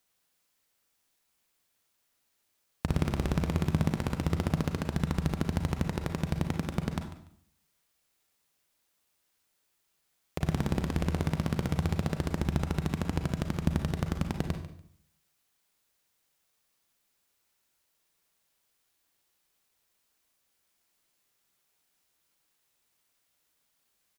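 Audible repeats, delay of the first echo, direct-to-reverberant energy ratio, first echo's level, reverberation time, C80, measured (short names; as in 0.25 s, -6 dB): 2, 0.145 s, 6.0 dB, -14.0 dB, 0.65 s, 10.5 dB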